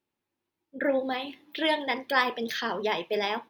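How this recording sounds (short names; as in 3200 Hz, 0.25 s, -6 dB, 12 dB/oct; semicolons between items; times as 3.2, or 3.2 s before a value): noise floor -86 dBFS; spectral tilt 0.0 dB/oct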